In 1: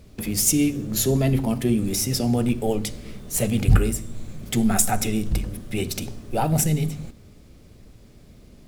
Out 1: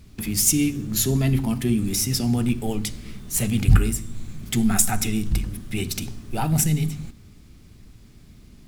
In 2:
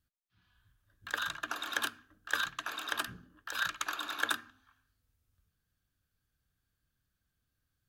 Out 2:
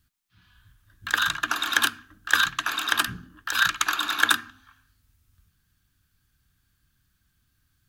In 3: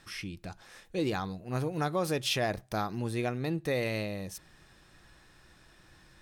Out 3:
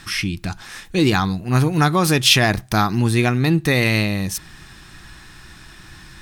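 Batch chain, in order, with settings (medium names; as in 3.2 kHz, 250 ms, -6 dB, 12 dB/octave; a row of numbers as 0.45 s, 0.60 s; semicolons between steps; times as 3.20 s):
peaking EQ 540 Hz -12 dB 0.86 oct; peak normalisation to -1.5 dBFS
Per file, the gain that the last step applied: +1.0 dB, +12.5 dB, +17.5 dB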